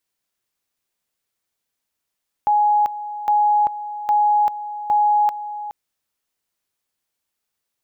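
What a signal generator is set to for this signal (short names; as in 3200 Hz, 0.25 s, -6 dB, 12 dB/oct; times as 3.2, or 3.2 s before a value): two-level tone 835 Hz -13 dBFS, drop 13.5 dB, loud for 0.39 s, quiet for 0.42 s, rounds 4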